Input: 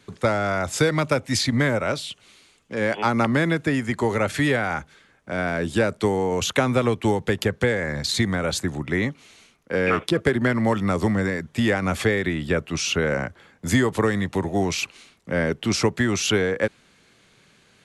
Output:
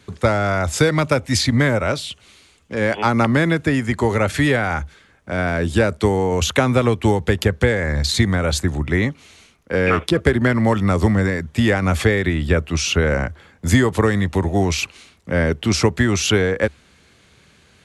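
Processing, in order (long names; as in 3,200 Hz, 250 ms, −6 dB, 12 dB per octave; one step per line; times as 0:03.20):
parametric band 72 Hz +14 dB 0.67 octaves
level +3.5 dB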